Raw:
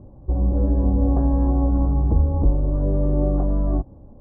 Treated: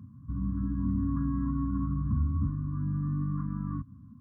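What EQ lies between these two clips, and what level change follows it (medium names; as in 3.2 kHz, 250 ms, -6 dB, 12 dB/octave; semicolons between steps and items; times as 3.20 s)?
high-pass 93 Hz 24 dB/octave; dynamic bell 180 Hz, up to -4 dB, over -35 dBFS, Q 0.75; brick-wall FIR band-stop 280–1000 Hz; 0.0 dB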